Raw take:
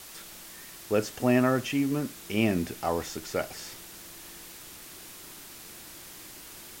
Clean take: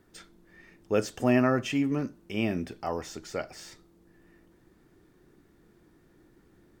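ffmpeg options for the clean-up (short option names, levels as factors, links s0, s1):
-af "afwtdn=0.0056,asetnsamples=n=441:p=0,asendcmd='2.15 volume volume -3.5dB',volume=1"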